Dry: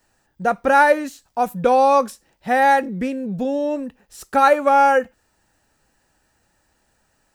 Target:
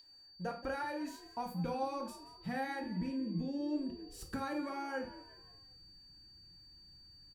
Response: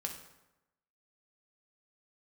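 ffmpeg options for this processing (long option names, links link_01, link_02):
-filter_complex "[0:a]asubboost=boost=10.5:cutoff=180,acompressor=threshold=-24dB:ratio=6,aeval=exprs='val(0)+0.0126*sin(2*PI*4600*n/s)':channel_layout=same,asplit=5[link_01][link_02][link_03][link_04][link_05];[link_02]adelay=176,afreqshift=62,volume=-17dB[link_06];[link_03]adelay=352,afreqshift=124,volume=-23.7dB[link_07];[link_04]adelay=528,afreqshift=186,volume=-30.5dB[link_08];[link_05]adelay=704,afreqshift=248,volume=-37.2dB[link_09];[link_01][link_06][link_07][link_08][link_09]amix=inputs=5:normalize=0[link_10];[1:a]atrim=start_sample=2205,afade=type=out:start_time=0.26:duration=0.01,atrim=end_sample=11907,asetrate=83790,aresample=44100[link_11];[link_10][link_11]afir=irnorm=-1:irlink=0,volume=-6dB"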